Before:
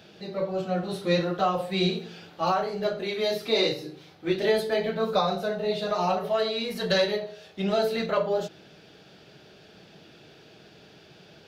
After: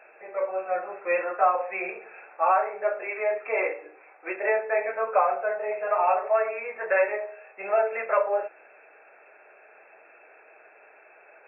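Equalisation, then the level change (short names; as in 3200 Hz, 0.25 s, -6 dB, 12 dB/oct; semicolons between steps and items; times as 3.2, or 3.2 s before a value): HPF 560 Hz 24 dB/oct; brick-wall FIR low-pass 2700 Hz; +4.5 dB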